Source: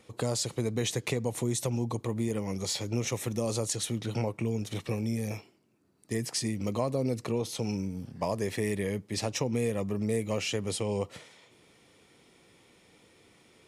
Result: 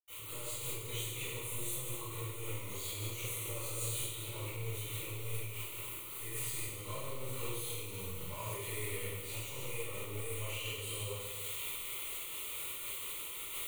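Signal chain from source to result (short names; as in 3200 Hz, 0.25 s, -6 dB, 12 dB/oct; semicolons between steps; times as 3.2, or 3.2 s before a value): switching spikes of -31.5 dBFS; passive tone stack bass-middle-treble 5-5-5; power-law curve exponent 0.35; fixed phaser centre 1100 Hz, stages 8; reverb RT60 1.6 s, pre-delay 77 ms; noise-modulated level, depth 55%; gain +3 dB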